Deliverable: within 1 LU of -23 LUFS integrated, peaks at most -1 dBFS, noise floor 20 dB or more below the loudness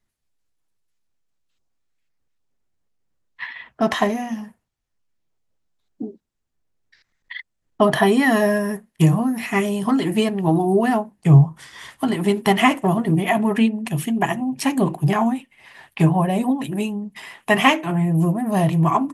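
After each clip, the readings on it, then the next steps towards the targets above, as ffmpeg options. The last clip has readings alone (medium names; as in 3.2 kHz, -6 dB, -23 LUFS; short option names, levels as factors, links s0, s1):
loudness -19.5 LUFS; peak level -1.5 dBFS; loudness target -23.0 LUFS
-> -af "volume=0.668"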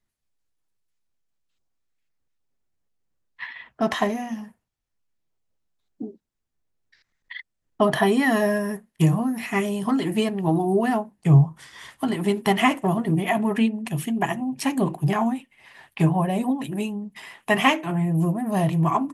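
loudness -23.0 LUFS; peak level -5.0 dBFS; noise floor -79 dBFS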